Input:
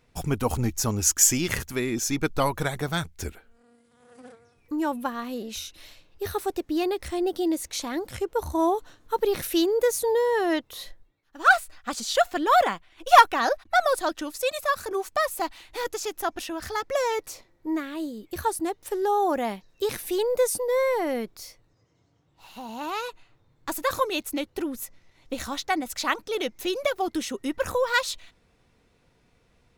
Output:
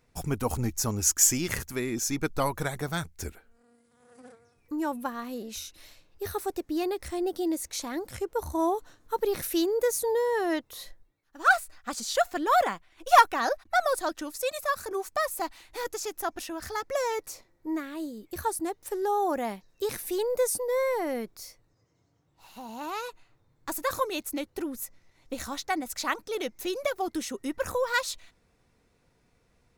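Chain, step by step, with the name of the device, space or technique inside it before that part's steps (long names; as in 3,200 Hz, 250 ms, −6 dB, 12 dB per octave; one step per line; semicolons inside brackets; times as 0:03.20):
exciter from parts (in parallel at −7 dB: high-pass filter 2,900 Hz 24 dB per octave + soft clipping −18.5 dBFS, distortion −10 dB)
on the sum: level −3.5 dB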